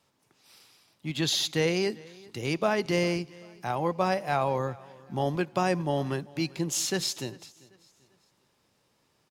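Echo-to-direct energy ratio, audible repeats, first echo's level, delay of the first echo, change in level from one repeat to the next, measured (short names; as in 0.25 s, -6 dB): -22.5 dB, 2, -23.0 dB, 0.394 s, -8.0 dB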